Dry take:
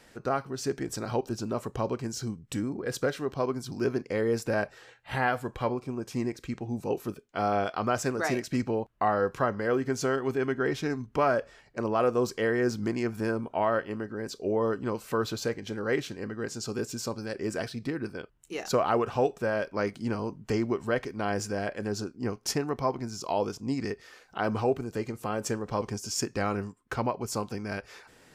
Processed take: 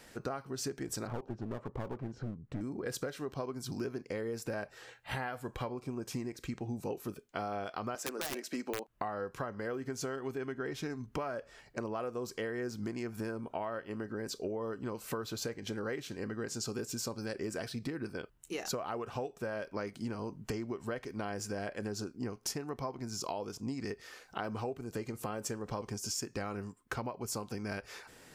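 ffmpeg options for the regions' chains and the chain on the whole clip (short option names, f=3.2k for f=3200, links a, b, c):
-filter_complex "[0:a]asettb=1/sr,asplit=3[a][b][c];[a]atrim=end=1.074[d];[b]atrim=start=1.07:end=2.61,asetpts=PTS-STARTPTS,afade=t=in:d=0.004:c=qsin,afade=t=out:st=1.536:d=0.004:c=qsin,lowpass=1.3k,aeval=exprs='clip(val(0),-1,0.0126)':c=same[e];[c]atrim=start=2.606[f];[d][e]acrossfade=d=0.004:c1=hsin:c2=qsin[g];[g][f]acrossfade=d=0.004:c1=qsin:c2=hsin,asettb=1/sr,asplit=3[h][i][j];[h]atrim=end=7.954[k];[i]atrim=start=7.95:end=8.88,asetpts=PTS-STARTPTS,afade=t=in:d=0.004:c=qsin,afade=t=out:st=0.926:d=0.004:c=qsin,highpass=f=250:w=0.5412,highpass=f=250:w=1.3066,aeval=exprs='(mod(10.6*val(0)+1,2)-1)/10.6':c=same[l];[j]atrim=start=8.876[m];[k][l]acrossfade=d=0.004:c1=hsin:c2=qsin[n];[n][m]acrossfade=d=0.004:c1=qsin:c2=hsin,highshelf=f=7.8k:g=6,acompressor=threshold=-34dB:ratio=12"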